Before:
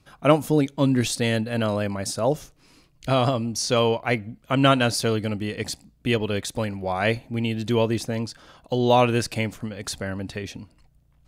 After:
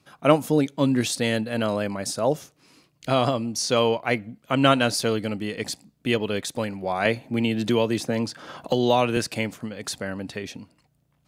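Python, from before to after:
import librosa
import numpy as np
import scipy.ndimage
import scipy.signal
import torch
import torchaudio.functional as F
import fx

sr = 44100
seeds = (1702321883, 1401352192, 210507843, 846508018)

y = scipy.signal.sosfilt(scipy.signal.butter(2, 140.0, 'highpass', fs=sr, output='sos'), x)
y = fx.band_squash(y, sr, depth_pct=70, at=(7.05, 9.17))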